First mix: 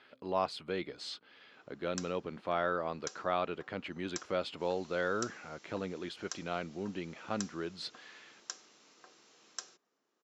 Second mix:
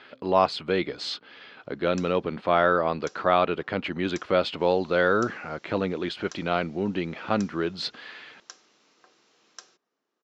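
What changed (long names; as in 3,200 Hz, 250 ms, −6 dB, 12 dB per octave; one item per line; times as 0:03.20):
speech +11.5 dB
master: add low-pass filter 5,800 Hz 12 dB per octave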